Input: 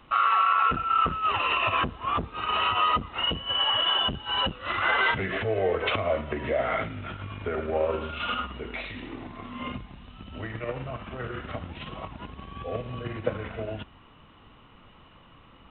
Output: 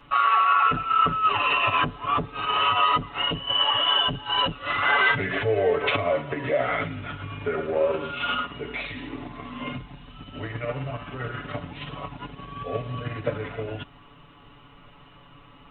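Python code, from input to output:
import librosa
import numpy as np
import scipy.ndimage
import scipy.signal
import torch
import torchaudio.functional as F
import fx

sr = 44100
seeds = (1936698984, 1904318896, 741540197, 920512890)

y = x + 0.96 * np.pad(x, (int(7.0 * sr / 1000.0), 0))[:len(x)]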